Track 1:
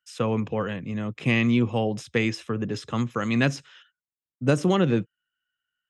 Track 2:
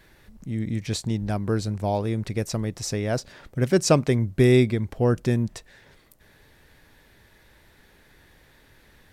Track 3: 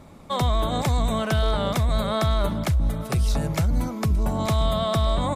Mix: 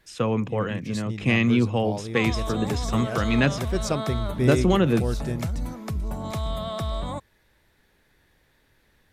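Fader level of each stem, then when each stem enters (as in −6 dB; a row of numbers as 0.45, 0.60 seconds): +1.0, −8.0, −7.0 decibels; 0.00, 0.00, 1.85 seconds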